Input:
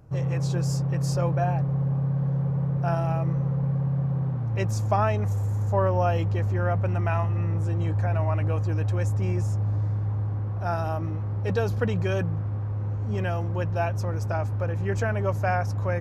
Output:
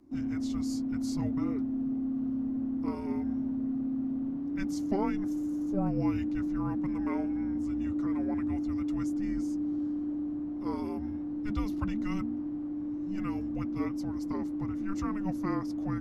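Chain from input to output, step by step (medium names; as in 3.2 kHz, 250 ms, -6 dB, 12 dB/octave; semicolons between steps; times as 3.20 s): frequency shift -400 Hz; trim -7 dB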